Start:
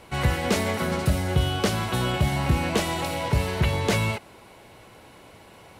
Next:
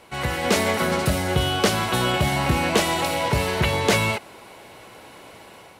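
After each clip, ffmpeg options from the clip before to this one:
ffmpeg -i in.wav -af "lowshelf=frequency=170:gain=-10,dynaudnorm=framelen=160:gausssize=5:maxgain=6dB" out.wav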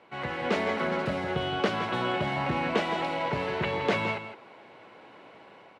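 ffmpeg -i in.wav -filter_complex "[0:a]highpass=160,lowpass=2700,asplit=2[link_01][link_02];[link_02]aecho=0:1:165:0.299[link_03];[link_01][link_03]amix=inputs=2:normalize=0,volume=-6dB" out.wav

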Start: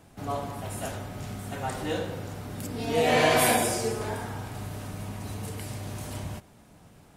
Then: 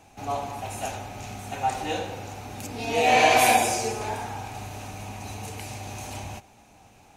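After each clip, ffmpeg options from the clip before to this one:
ffmpeg -i in.wav -af "equalizer=frequency=160:width_type=o:width=0.33:gain=-9,equalizer=frequency=800:width_type=o:width=0.33:gain=12,equalizer=frequency=2500:width_type=o:width=0.33:gain=11,equalizer=frequency=4000:width_type=o:width=0.33:gain=4,equalizer=frequency=6300:width_type=o:width=0.33:gain=10,volume=-1.5dB" out.wav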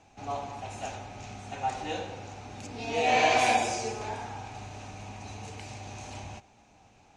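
ffmpeg -i in.wav -af "lowpass=frequency=7300:width=0.5412,lowpass=frequency=7300:width=1.3066,volume=-5dB" out.wav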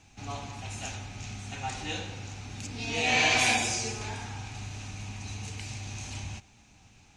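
ffmpeg -i in.wav -af "equalizer=frequency=620:width_type=o:width=2.1:gain=-14.5,volume=6.5dB" out.wav

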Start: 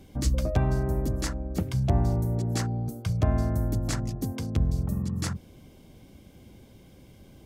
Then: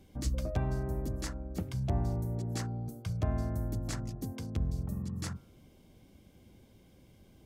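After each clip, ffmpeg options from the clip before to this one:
ffmpeg -i in.wav -af "bandreject=frequency=137.9:width_type=h:width=4,bandreject=frequency=275.8:width_type=h:width=4,bandreject=frequency=413.7:width_type=h:width=4,bandreject=frequency=551.6:width_type=h:width=4,bandreject=frequency=689.5:width_type=h:width=4,bandreject=frequency=827.4:width_type=h:width=4,bandreject=frequency=965.3:width_type=h:width=4,bandreject=frequency=1103.2:width_type=h:width=4,bandreject=frequency=1241.1:width_type=h:width=4,bandreject=frequency=1379:width_type=h:width=4,bandreject=frequency=1516.9:width_type=h:width=4,volume=-7.5dB" out.wav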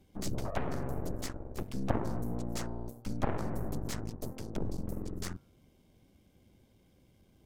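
ffmpeg -i in.wav -af "aeval=exprs='0.119*(cos(1*acos(clip(val(0)/0.119,-1,1)))-cos(1*PI/2))+0.0531*(cos(3*acos(clip(val(0)/0.119,-1,1)))-cos(3*PI/2))+0.0133*(cos(8*acos(clip(val(0)/0.119,-1,1)))-cos(8*PI/2))':channel_layout=same,volume=4dB" out.wav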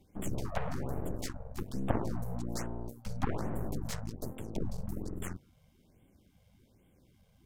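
ffmpeg -i in.wav -af "afftfilt=real='re*(1-between(b*sr/1024,280*pow(5200/280,0.5+0.5*sin(2*PI*1.2*pts/sr))/1.41,280*pow(5200/280,0.5+0.5*sin(2*PI*1.2*pts/sr))*1.41))':imag='im*(1-between(b*sr/1024,280*pow(5200/280,0.5+0.5*sin(2*PI*1.2*pts/sr))/1.41,280*pow(5200/280,0.5+0.5*sin(2*PI*1.2*pts/sr))*1.41))':win_size=1024:overlap=0.75" out.wav

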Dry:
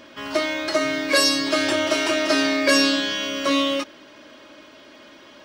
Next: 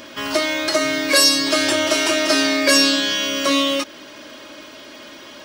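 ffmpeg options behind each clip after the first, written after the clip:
ffmpeg -i in.wav -filter_complex "[0:a]highshelf=frequency=5500:gain=10.5,asplit=2[link_01][link_02];[link_02]acompressor=threshold=-28dB:ratio=6,volume=2dB[link_03];[link_01][link_03]amix=inputs=2:normalize=0,volume=-1dB" out.wav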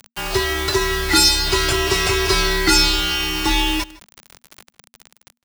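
ffmpeg -i in.wav -filter_complex "[0:a]acrusher=bits=4:mix=0:aa=0.000001,afreqshift=-240,asplit=2[link_01][link_02];[link_02]adelay=157.4,volume=-20dB,highshelf=frequency=4000:gain=-3.54[link_03];[link_01][link_03]amix=inputs=2:normalize=0" out.wav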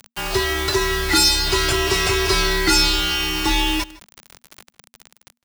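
ffmpeg -i in.wav -af "asoftclip=type=tanh:threshold=-7.5dB" out.wav

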